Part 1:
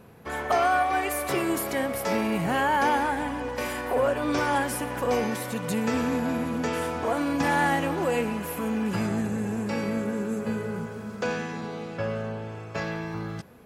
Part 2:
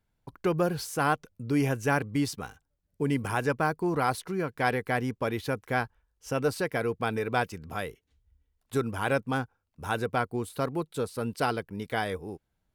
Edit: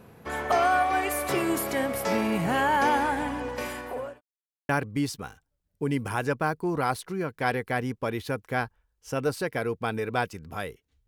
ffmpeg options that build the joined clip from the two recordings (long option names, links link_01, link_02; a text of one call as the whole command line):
ffmpeg -i cue0.wav -i cue1.wav -filter_complex "[0:a]apad=whole_dur=11.07,atrim=end=11.07,asplit=2[link_01][link_02];[link_01]atrim=end=4.21,asetpts=PTS-STARTPTS,afade=type=out:start_time=3.12:duration=1.09:curve=qsin[link_03];[link_02]atrim=start=4.21:end=4.69,asetpts=PTS-STARTPTS,volume=0[link_04];[1:a]atrim=start=1.88:end=8.26,asetpts=PTS-STARTPTS,afade=type=in:duration=0.004:curve=hsin[link_05];[link_03][link_04][link_05]concat=n=3:v=0:a=1" out.wav